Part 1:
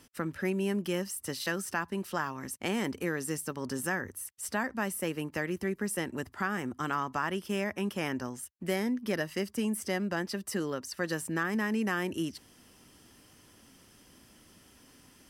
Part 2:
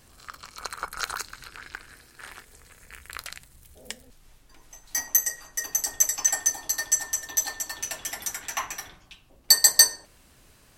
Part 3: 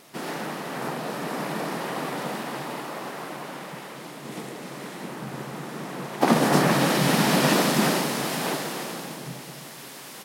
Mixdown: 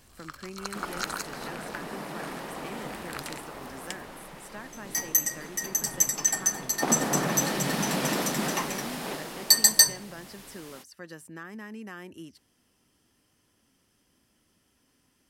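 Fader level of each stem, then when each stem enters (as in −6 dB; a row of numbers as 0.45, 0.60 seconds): −11.0, −2.0, −8.0 decibels; 0.00, 0.00, 0.60 seconds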